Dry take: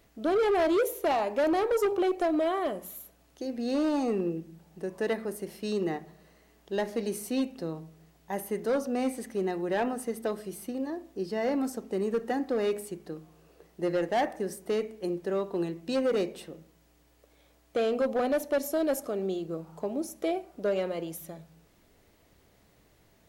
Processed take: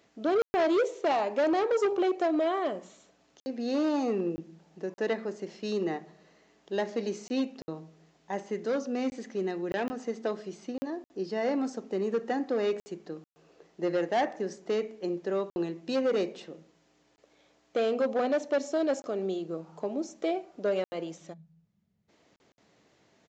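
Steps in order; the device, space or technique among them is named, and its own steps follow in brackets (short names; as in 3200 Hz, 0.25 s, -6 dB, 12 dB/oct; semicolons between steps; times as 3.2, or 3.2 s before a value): 21.33–22.09 spectral gain 230–11000 Hz -23 dB; call with lost packets (HPF 170 Hz 12 dB/oct; downsampling 16000 Hz; packet loss packets of 20 ms bursts); 8.39–10 dynamic EQ 820 Hz, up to -5 dB, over -44 dBFS, Q 1.2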